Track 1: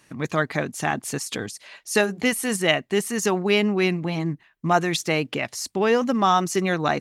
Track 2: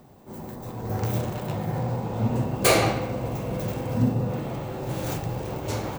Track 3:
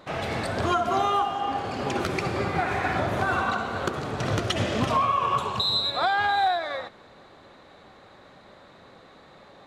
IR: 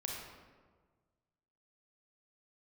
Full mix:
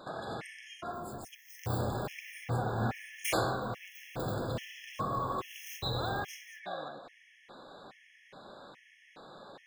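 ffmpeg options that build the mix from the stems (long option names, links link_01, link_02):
-filter_complex "[0:a]volume=-19.5dB,asplit=3[link_01][link_02][link_03];[link_02]volume=-20.5dB[link_04];[1:a]flanger=delay=22.5:depth=4.2:speed=1.7,dynaudnorm=framelen=120:gausssize=7:maxgain=13dB,lowshelf=frequency=120:width_type=q:width=1.5:gain=8,adelay=600,volume=-14dB[link_05];[2:a]alimiter=limit=-18.5dB:level=0:latency=1:release=115,volume=-1dB,asplit=3[link_06][link_07][link_08];[link_06]atrim=end=0.92,asetpts=PTS-STARTPTS,afade=type=out:start_time=0.916:duration=0.004:curve=hsin[link_09];[link_07]atrim=start=0.92:end=1.7,asetpts=PTS-STARTPTS,volume=0[link_10];[link_08]atrim=start=1.7,asetpts=PTS-STARTPTS,afade=type=in:duration=0.004:curve=hsin[link_11];[link_09][link_10][link_11]concat=n=3:v=0:a=1,asplit=2[link_12][link_13];[link_13]volume=-10.5dB[link_14];[link_03]apad=whole_len=426064[link_15];[link_12][link_15]sidechaincompress=threshold=-55dB:ratio=4:attack=16:release=103[link_16];[link_01][link_16]amix=inputs=2:normalize=0,acompressor=threshold=-42dB:ratio=10,volume=0dB[link_17];[3:a]atrim=start_sample=2205[link_18];[link_04][link_14]amix=inputs=2:normalize=0[link_19];[link_19][link_18]afir=irnorm=-1:irlink=0[link_20];[link_05][link_17][link_20]amix=inputs=3:normalize=0,equalizer=frequency=62:width=0.93:gain=-14.5,afftfilt=real='re*gt(sin(2*PI*1.2*pts/sr)*(1-2*mod(floor(b*sr/1024/1700),2)),0)':imag='im*gt(sin(2*PI*1.2*pts/sr)*(1-2*mod(floor(b*sr/1024/1700),2)),0)':win_size=1024:overlap=0.75"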